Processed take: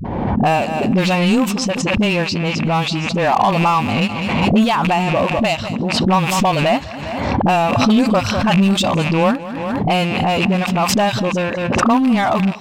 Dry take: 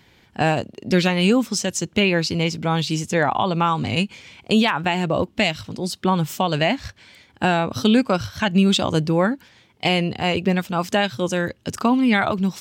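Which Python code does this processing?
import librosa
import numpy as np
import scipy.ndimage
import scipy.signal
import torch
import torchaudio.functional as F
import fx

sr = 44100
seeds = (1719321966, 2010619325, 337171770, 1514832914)

p1 = fx.rattle_buzz(x, sr, strikes_db=-27.0, level_db=-18.0)
p2 = fx.band_shelf(p1, sr, hz=910.0, db=8.0, octaves=1.0)
p3 = fx.env_lowpass(p2, sr, base_hz=710.0, full_db=-12.0)
p4 = fx.high_shelf(p3, sr, hz=9400.0, db=11.0)
p5 = fx.small_body(p4, sr, hz=(220.0, 560.0, 2700.0), ring_ms=30, db=7)
p6 = 10.0 ** (-14.5 / 20.0) * (np.abs((p5 / 10.0 ** (-14.5 / 20.0) + 3.0) % 4.0 - 2.0) - 1.0)
p7 = p5 + (p6 * librosa.db_to_amplitude(-9.0))
p8 = fx.dispersion(p7, sr, late='highs', ms=49.0, hz=300.0)
p9 = p8 + fx.echo_feedback(p8, sr, ms=202, feedback_pct=29, wet_db=-19.5, dry=0)
p10 = fx.pre_swell(p9, sr, db_per_s=29.0)
y = p10 * librosa.db_to_amplitude(-3.0)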